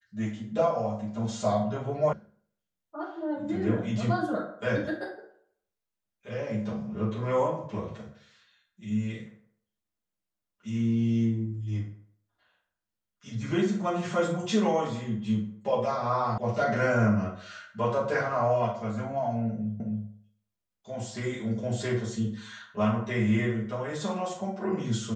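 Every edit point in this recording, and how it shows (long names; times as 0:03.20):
0:02.13: cut off before it has died away
0:16.38: cut off before it has died away
0:19.80: the same again, the last 0.27 s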